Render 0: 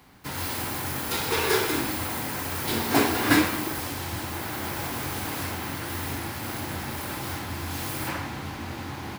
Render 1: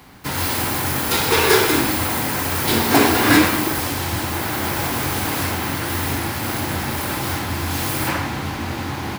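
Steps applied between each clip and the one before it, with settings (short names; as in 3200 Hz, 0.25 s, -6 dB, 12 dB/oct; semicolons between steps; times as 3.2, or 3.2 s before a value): maximiser +10 dB; gain -1 dB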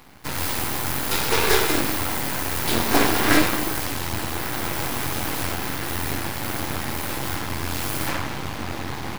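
half-wave rectifier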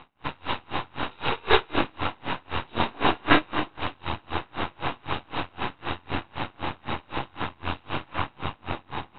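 rippled Chebyshev low-pass 3900 Hz, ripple 6 dB; dB-linear tremolo 3.9 Hz, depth 33 dB; gain +6.5 dB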